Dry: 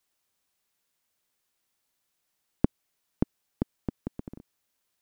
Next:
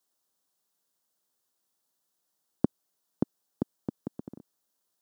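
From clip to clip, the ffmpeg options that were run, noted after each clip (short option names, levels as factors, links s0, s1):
-af "highpass=150,equalizer=f=2300:t=o:w=0.77:g=-13.5"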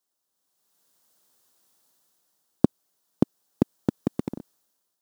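-filter_complex "[0:a]dynaudnorm=f=280:g=5:m=5.62,asplit=2[s0][s1];[s1]acrusher=bits=4:dc=4:mix=0:aa=0.000001,volume=0.282[s2];[s0][s2]amix=inputs=2:normalize=0,volume=0.75"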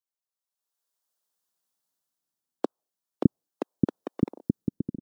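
-filter_complex "[0:a]afftdn=nr=15:nf=-51,acrossover=split=370[s0][s1];[s0]adelay=610[s2];[s2][s1]amix=inputs=2:normalize=0"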